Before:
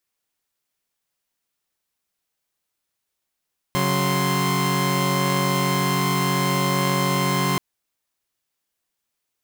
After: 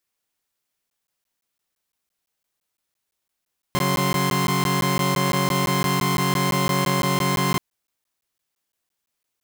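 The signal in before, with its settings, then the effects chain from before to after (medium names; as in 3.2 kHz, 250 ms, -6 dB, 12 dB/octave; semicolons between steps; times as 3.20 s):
chord C#3/F#3/C6 saw, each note -21 dBFS 3.83 s
crackling interface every 0.17 s, samples 512, zero, from 0.90 s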